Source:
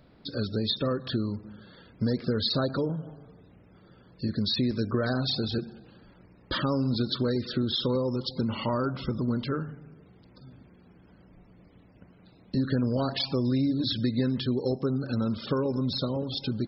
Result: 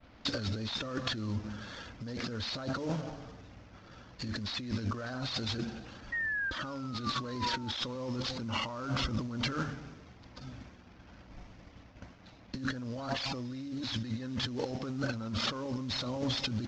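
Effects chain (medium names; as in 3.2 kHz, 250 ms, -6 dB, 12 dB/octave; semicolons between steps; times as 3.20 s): CVSD coder 32 kbps; fifteen-band graphic EQ 160 Hz -12 dB, 400 Hz -10 dB, 4 kHz -3 dB; expander -56 dBFS; painted sound fall, 6.12–7.71 s, 860–1900 Hz -43 dBFS; compressor with a negative ratio -40 dBFS, ratio -1; level-controlled noise filter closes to 2.8 kHz, open at -48 dBFS; trim +4 dB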